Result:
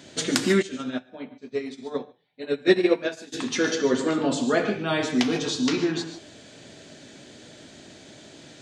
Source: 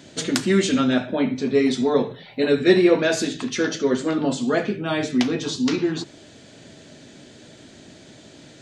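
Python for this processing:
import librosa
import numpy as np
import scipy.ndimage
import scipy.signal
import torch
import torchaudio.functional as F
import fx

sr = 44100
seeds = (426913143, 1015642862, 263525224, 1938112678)

y = fx.low_shelf(x, sr, hz=310.0, db=-4.5)
y = fx.rev_gated(y, sr, seeds[0], gate_ms=170, shape='rising', drr_db=8.0)
y = fx.upward_expand(y, sr, threshold_db=-32.0, expansion=2.5, at=(0.61, 3.32), fade=0.02)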